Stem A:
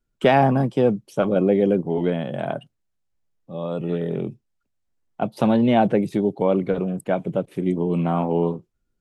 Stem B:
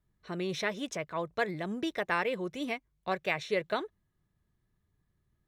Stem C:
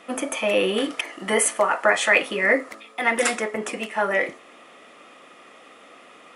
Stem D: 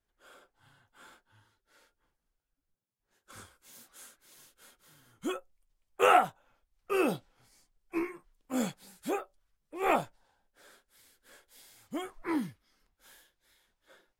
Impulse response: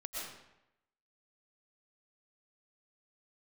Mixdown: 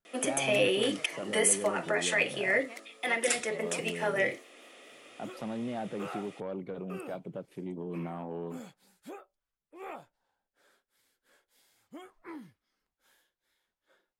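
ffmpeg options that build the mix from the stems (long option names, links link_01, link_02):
-filter_complex "[0:a]asoftclip=type=tanh:threshold=-11.5dB,volume=-11dB[link_01];[1:a]volume=-13dB[link_02];[2:a]alimiter=limit=-11.5dB:level=0:latency=1:release=474,highpass=300,equalizer=frequency=1100:width_type=o:width=1.4:gain=-12,adelay=50,volume=0dB[link_03];[3:a]highshelf=frequency=4600:gain=-5,acompressor=threshold=-33dB:ratio=3,volume=-8dB[link_04];[link_01][link_02]amix=inputs=2:normalize=0,alimiter=level_in=5dB:limit=-24dB:level=0:latency=1:release=126,volume=-5dB,volume=0dB[link_05];[link_03][link_04][link_05]amix=inputs=3:normalize=0,lowshelf=frequency=92:gain=-11.5"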